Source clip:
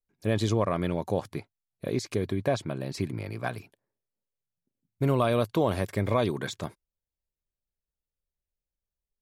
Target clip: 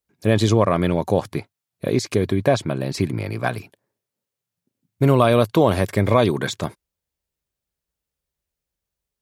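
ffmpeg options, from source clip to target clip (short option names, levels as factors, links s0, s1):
-af "highpass=55,volume=2.82"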